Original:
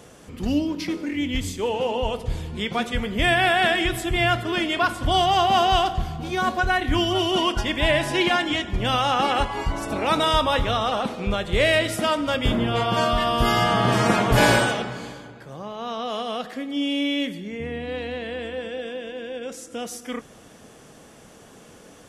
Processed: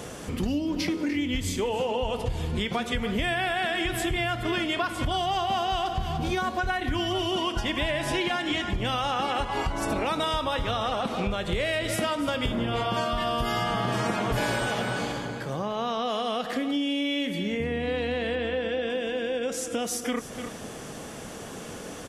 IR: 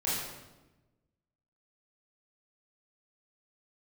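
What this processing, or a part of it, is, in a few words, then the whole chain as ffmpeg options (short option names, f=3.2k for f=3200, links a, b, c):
serial compression, peaks first: -filter_complex "[0:a]asettb=1/sr,asplit=3[a][b][c];[a]atrim=end=18.354[d];[b]atrim=start=18.35:end=18.9,asetpts=PTS-STARTPTS,afade=t=in:d=0.004:c=qsin,afade=t=out:st=0.546:d=0.004:c=qsin,lowpass=5k[e];[c]atrim=start=18.896[f];[d][e]acrossfade=d=0.004:c1=hsin:c2=qsin[g];[g][f]acrossfade=d=0.004:c1=qsin:c2=hsin,aecho=1:1:295:0.188,acompressor=threshold=-28dB:ratio=4,acompressor=threshold=-37dB:ratio=2,volume=8.5dB"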